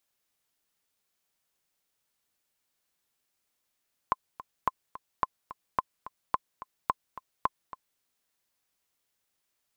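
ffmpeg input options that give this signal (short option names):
-f lavfi -i "aevalsrc='pow(10,(-11-16*gte(mod(t,2*60/216),60/216))/20)*sin(2*PI*1040*mod(t,60/216))*exp(-6.91*mod(t,60/216)/0.03)':d=3.88:s=44100"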